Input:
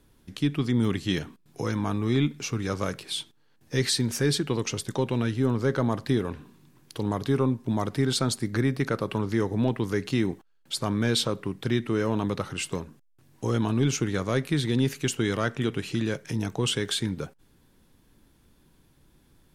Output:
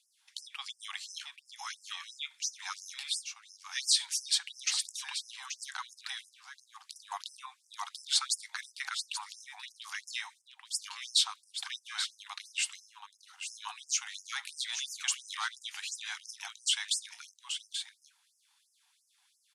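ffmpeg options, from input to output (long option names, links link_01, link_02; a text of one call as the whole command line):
ffmpeg -i in.wav -filter_complex "[0:a]lowpass=frequency=10000:width=0.5412,lowpass=frequency=10000:width=1.3066,lowshelf=frequency=340:gain=-10,aecho=1:1:832:0.355,acrossover=split=130|1100|1700[link_01][link_02][link_03][link_04];[link_03]acrusher=bits=3:mix=0:aa=0.000001[link_05];[link_01][link_02][link_05][link_04]amix=inputs=4:normalize=0,afftfilt=real='re*gte(b*sr/1024,700*pow(5100/700,0.5+0.5*sin(2*PI*2.9*pts/sr)))':imag='im*gte(b*sr/1024,700*pow(5100/700,0.5+0.5*sin(2*PI*2.9*pts/sr)))':win_size=1024:overlap=0.75,volume=1.5dB" out.wav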